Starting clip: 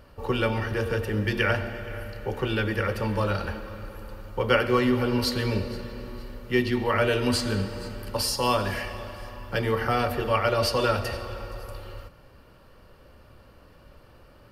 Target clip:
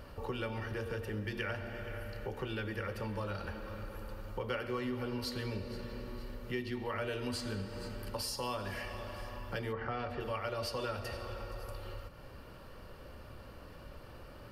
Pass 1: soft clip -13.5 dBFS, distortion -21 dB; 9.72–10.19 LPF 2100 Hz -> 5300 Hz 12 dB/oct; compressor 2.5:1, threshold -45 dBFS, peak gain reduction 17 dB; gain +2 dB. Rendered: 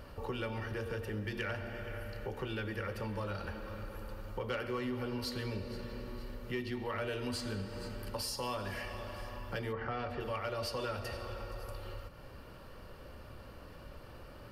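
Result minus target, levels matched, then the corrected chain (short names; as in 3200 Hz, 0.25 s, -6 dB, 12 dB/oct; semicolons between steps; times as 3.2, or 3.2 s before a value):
soft clip: distortion +14 dB
soft clip -5 dBFS, distortion -36 dB; 9.72–10.19 LPF 2100 Hz -> 5300 Hz 12 dB/oct; compressor 2.5:1, threshold -45 dBFS, peak gain reduction 18.5 dB; gain +2 dB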